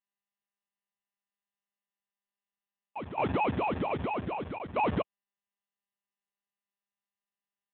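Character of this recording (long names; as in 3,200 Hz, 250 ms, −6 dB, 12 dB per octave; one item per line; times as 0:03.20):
a quantiser's noise floor 6 bits, dither none
tremolo saw down 0.63 Hz, depth 80%
aliases and images of a low sample rate 1,700 Hz, jitter 0%
AMR narrowband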